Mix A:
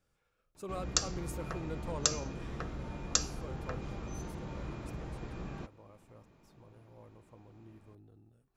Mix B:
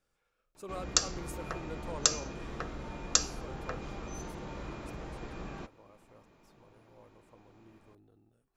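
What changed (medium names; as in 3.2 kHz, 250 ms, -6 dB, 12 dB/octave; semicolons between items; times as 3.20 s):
background +3.5 dB; master: add peaking EQ 100 Hz -8 dB 2.3 oct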